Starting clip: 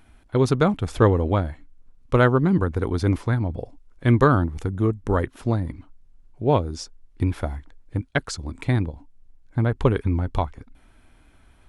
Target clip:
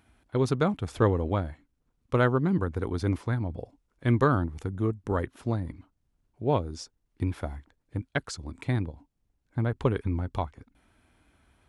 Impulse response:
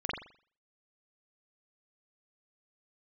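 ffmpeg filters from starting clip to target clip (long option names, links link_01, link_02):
-af "highpass=57,volume=-6dB"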